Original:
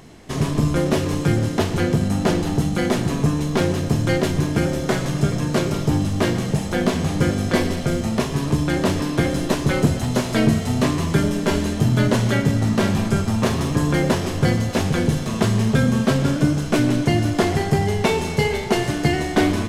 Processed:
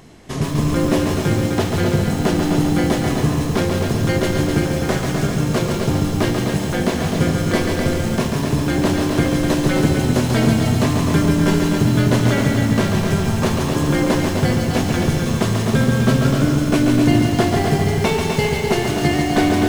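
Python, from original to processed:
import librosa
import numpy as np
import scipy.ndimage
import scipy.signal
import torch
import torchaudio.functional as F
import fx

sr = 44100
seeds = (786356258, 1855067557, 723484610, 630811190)

p1 = x + fx.echo_single(x, sr, ms=254, db=-6.0, dry=0)
y = fx.echo_crushed(p1, sr, ms=139, feedback_pct=55, bits=6, wet_db=-4.5)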